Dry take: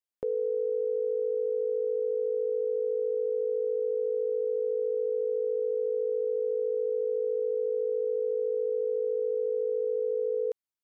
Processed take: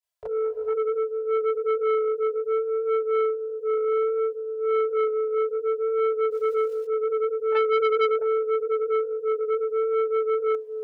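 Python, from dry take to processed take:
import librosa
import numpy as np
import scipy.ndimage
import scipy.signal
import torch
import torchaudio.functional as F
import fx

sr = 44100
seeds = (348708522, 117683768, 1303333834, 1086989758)

y = fx.rev_gated(x, sr, seeds[0], gate_ms=480, shape='rising', drr_db=6.5)
y = fx.dmg_crackle(y, sr, seeds[1], per_s=400.0, level_db=-50.0, at=(6.3, 6.83), fade=0.02)
y = scipy.signal.sosfilt(scipy.signal.butter(2, 48.0, 'highpass', fs=sr, output='sos'), y)
y = fx.low_shelf(y, sr, hz=420.0, db=11.0, at=(7.52, 8.19))
y = fx.chorus_voices(y, sr, voices=2, hz=0.63, base_ms=28, depth_ms=3.3, mix_pct=70)
y = scipy.signal.sosfilt(scipy.signal.cheby1(4, 1.0, [190.0, 430.0], 'bandstop', fs=sr, output='sos'), y)
y = y + 0.96 * np.pad(y, (int(3.0 * sr / 1000.0), 0))[:len(y)]
y = fx.transformer_sat(y, sr, knee_hz=1200.0)
y = F.gain(torch.from_numpy(y), 7.5).numpy()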